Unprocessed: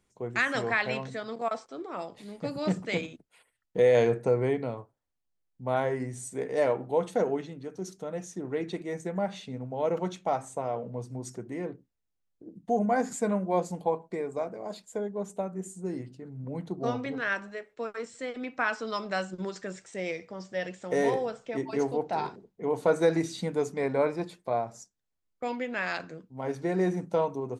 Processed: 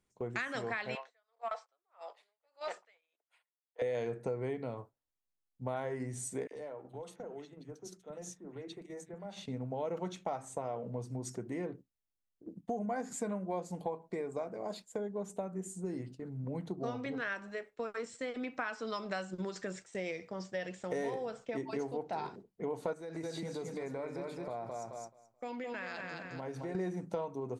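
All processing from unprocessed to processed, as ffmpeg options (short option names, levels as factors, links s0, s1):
-filter_complex "[0:a]asettb=1/sr,asplit=3[s0][s1][s2];[s0]atrim=end=0.954[s3];[s1]atrim=start=0.95:end=3.82,asetpts=PTS-STARTPTS,afade=t=in:d=0.004:c=qsin,afade=t=out:st=2.866:d=0.004:c=qsin,highpass=f=580:w=0.5412,highpass=f=580:w=1.3066,asplit=2[s4][s5];[s5]highpass=f=720:p=1,volume=2.51,asoftclip=type=tanh:threshold=0.112[s6];[s4][s6]amix=inputs=2:normalize=0,lowpass=f=2300:p=1,volume=0.501,aeval=exprs='val(0)*pow(10,-34*(0.5-0.5*cos(2*PI*1.7*n/s))/20)':c=same[s7];[s2]atrim=start=3.816[s8];[s3][s7]acrossfade=d=0.004:c1=hsin:c2=qsin[s9];[s9][s8]acrossfade=d=0.004:c1=qsin:c2=hsin,asettb=1/sr,asplit=3[s10][s11][s12];[s10]atrim=end=6.474[s13];[s11]atrim=start=6.47:end=9.46,asetpts=PTS-STARTPTS,afade=t=in:d=0.004:c=qsin,afade=t=out:st=2.986:d=0.004:c=qsin,acompressor=threshold=0.00891:ratio=8:attack=3.2:release=140:knee=1:detection=peak,acrossover=split=210|2000[s14][s15][s16];[s15]adelay=40[s17];[s14]adelay=80[s18];[s18][s17][s16]amix=inputs=3:normalize=0,atrim=end_sample=131859[s19];[s12]atrim=start=9.456[s20];[s13][s19]acrossfade=d=0.004:c1=hsin:c2=qsin[s21];[s21][s20]acrossfade=d=0.004:c1=qsin:c2=hsin,asettb=1/sr,asplit=3[s22][s23][s24];[s22]atrim=end=22.934[s25];[s23]atrim=start=22.93:end=26.75,asetpts=PTS-STARTPTS,afade=t=in:d=0.004:c=qsin,afade=t=out:st=3.816:d=0.004:c=qsin,aecho=1:1:215|430|645|860:0.501|0.145|0.0421|0.0122,atrim=end_sample=168462,acompressor=threshold=0.0112:ratio=3:attack=3.2:release=140:knee=1:detection=peak[s26];[s24]atrim=start=26.746[s27];[s25][s26]acrossfade=d=0.004:c1=hsin:c2=qsin[s28];[s28][s27]acrossfade=d=0.004:c1=qsin:c2=hsin,agate=range=0.398:threshold=0.00447:ratio=16:detection=peak,acompressor=threshold=0.0178:ratio=4"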